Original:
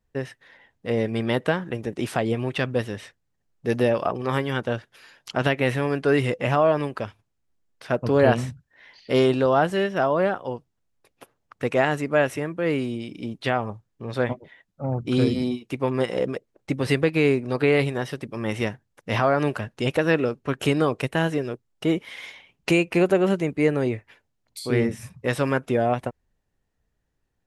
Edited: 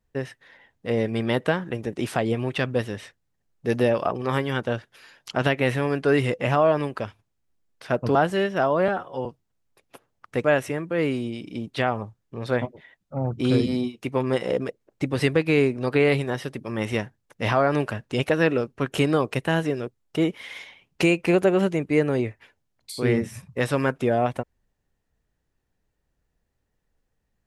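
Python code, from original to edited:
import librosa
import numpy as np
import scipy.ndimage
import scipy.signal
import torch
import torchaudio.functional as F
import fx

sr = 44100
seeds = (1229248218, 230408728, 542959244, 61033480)

y = fx.edit(x, sr, fx.cut(start_s=8.15, length_s=1.4),
    fx.stretch_span(start_s=10.28, length_s=0.25, factor=1.5),
    fx.cut(start_s=11.72, length_s=0.4), tone=tone)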